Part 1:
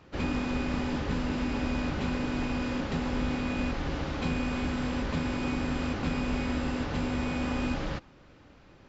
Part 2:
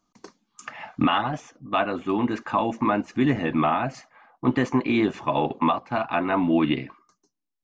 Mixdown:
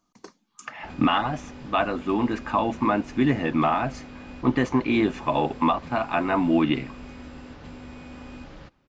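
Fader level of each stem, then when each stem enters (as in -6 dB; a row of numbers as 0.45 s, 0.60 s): -11.0 dB, 0.0 dB; 0.70 s, 0.00 s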